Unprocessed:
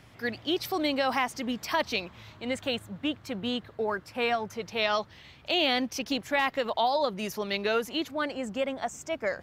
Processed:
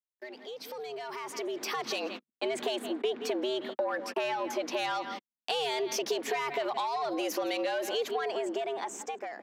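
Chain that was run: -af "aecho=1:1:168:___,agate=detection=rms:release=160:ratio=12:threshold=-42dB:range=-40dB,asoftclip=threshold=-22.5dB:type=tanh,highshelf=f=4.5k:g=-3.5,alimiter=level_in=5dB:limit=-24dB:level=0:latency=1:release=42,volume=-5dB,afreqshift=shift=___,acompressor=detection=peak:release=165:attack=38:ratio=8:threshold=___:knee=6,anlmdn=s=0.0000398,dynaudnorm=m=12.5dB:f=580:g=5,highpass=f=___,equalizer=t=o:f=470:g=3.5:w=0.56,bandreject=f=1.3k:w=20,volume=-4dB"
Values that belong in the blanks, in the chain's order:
0.0944, 140, -40dB, 140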